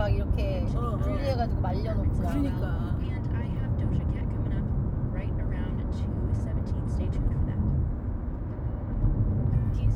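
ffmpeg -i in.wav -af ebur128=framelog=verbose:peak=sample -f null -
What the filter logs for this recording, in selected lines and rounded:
Integrated loudness:
  I:         -29.3 LUFS
  Threshold: -39.3 LUFS
Loudness range:
  LRA:         1.6 LU
  Threshold: -49.6 LUFS
  LRA low:   -30.2 LUFS
  LRA high:  -28.6 LUFS
Sample peak:
  Peak:      -12.5 dBFS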